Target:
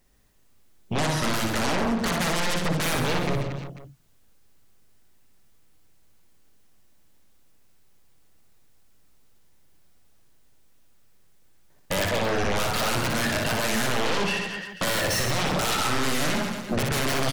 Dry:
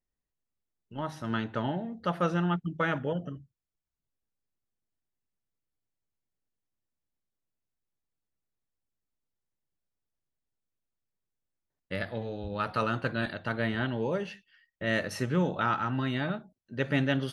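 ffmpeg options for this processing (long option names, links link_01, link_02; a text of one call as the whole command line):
ffmpeg -i in.wav -af "aeval=exprs='0.211*(cos(1*acos(clip(val(0)/0.211,-1,1)))-cos(1*PI/2))+0.0841*(cos(4*acos(clip(val(0)/0.211,-1,1)))-cos(4*PI/2))':channel_layout=same,alimiter=limit=-22.5dB:level=0:latency=1:release=313,aeval=exprs='0.075*sin(PI/2*7.94*val(0)/0.075)':channel_layout=same,aecho=1:1:60|135|228.8|345.9|492.4:0.631|0.398|0.251|0.158|0.1,acompressor=threshold=-22dB:ratio=6,volume=1.5dB" out.wav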